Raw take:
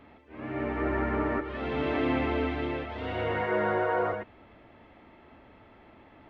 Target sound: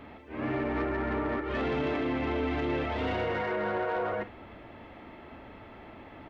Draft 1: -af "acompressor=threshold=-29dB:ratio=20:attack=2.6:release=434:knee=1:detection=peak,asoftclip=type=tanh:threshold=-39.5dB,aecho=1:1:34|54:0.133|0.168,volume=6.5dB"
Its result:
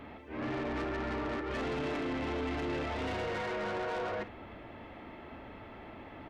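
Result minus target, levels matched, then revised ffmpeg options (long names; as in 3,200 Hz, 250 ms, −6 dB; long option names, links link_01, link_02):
soft clipping: distortion +9 dB
-af "acompressor=threshold=-29dB:ratio=20:attack=2.6:release=434:knee=1:detection=peak,asoftclip=type=tanh:threshold=-30.5dB,aecho=1:1:34|54:0.133|0.168,volume=6.5dB"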